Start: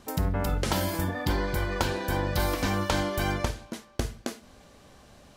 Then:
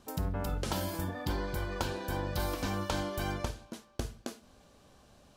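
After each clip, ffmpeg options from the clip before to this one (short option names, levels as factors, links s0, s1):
-af "equalizer=f=2000:w=3.8:g=-5.5,volume=0.473"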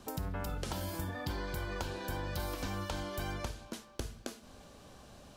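-filter_complex "[0:a]acrossover=split=82|1200[s0][s1][s2];[s0]acompressor=threshold=0.00447:ratio=4[s3];[s1]acompressor=threshold=0.00501:ratio=4[s4];[s2]acompressor=threshold=0.00316:ratio=4[s5];[s3][s4][s5]amix=inputs=3:normalize=0,volume=1.88"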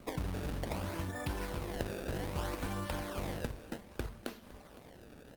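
-af "acrusher=samples=24:mix=1:aa=0.000001:lfo=1:lforange=38.4:lforate=0.63,aecho=1:1:510|1020|1530|2040:0.112|0.0583|0.0303|0.0158,volume=1.12" -ar 48000 -c:a libopus -b:a 32k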